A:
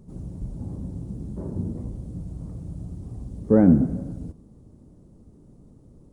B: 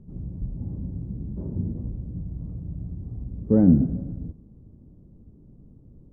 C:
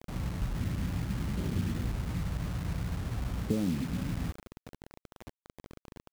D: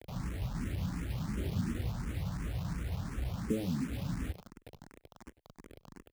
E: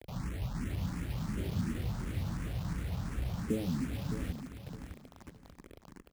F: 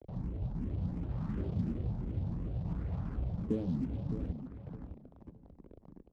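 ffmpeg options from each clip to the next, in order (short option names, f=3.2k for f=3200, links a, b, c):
-af "lowpass=f=1.2k:p=1,lowshelf=f=380:g=11,volume=-8.5dB"
-af "acompressor=threshold=-26dB:ratio=16,acrusher=bits=6:mix=0:aa=0.000001"
-filter_complex "[0:a]asplit=2[a][b];[b]adelay=99.13,volume=-19dB,highshelf=f=4k:g=-2.23[c];[a][c]amix=inputs=2:normalize=0,asplit=2[d][e];[e]afreqshift=2.8[f];[d][f]amix=inputs=2:normalize=1"
-af "aecho=1:1:614|1228|1842:0.335|0.0804|0.0193"
-filter_complex "[0:a]acrossover=split=340|910|2800[a][b][c][d];[c]acrusher=samples=41:mix=1:aa=0.000001:lfo=1:lforange=65.6:lforate=0.59[e];[a][b][e][d]amix=inputs=4:normalize=0,adynamicsmooth=sensitivity=7:basefreq=1k"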